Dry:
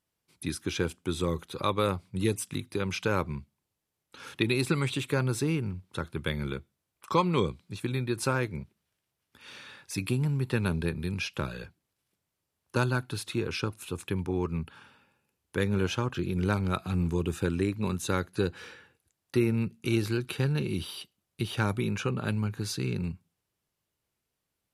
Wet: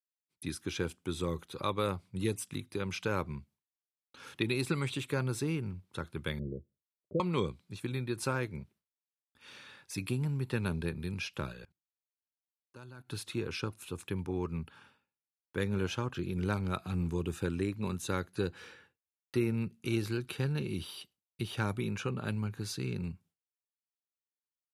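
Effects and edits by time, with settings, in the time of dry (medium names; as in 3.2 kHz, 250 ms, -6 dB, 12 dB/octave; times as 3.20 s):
6.39–7.20 s: steep low-pass 620 Hz 96 dB/octave
11.52–13.09 s: level held to a coarse grid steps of 22 dB
whole clip: expander -53 dBFS; trim -5 dB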